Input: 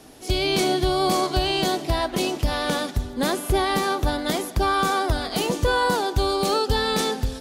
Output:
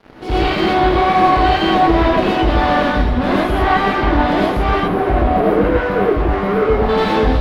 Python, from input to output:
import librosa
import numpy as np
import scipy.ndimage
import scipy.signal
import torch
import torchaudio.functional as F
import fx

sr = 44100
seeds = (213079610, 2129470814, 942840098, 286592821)

y = fx.high_shelf(x, sr, hz=5200.0, db=-8.5, at=(3.88, 4.28))
y = fx.spec_box(y, sr, start_s=4.74, length_s=2.15, low_hz=770.0, high_hz=9900.0, gain_db=-28)
y = fx.fuzz(y, sr, gain_db=34.0, gate_db=-43.0)
y = fx.air_absorb(y, sr, metres=390.0)
y = fx.rev_gated(y, sr, seeds[0], gate_ms=150, shape='rising', drr_db=-5.0)
y = y * librosa.db_to_amplitude(-3.0)